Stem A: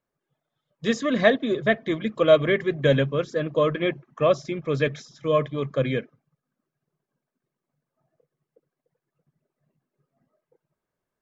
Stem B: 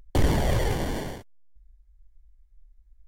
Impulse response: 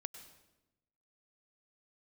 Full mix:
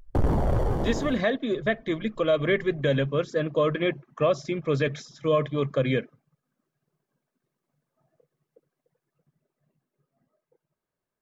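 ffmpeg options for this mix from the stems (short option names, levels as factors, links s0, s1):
-filter_complex "[0:a]dynaudnorm=f=370:g=13:m=2,volume=0.708[s0];[1:a]afwtdn=0.0251,asoftclip=type=tanh:threshold=0.106,volume=1.33[s1];[s0][s1]amix=inputs=2:normalize=0,alimiter=limit=0.211:level=0:latency=1:release=85"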